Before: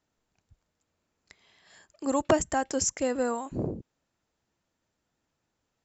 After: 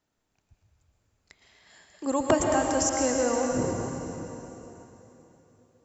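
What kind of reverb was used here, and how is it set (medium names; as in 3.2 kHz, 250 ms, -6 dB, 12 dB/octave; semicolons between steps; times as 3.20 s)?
plate-style reverb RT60 3.5 s, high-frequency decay 0.95×, pre-delay 100 ms, DRR 0.5 dB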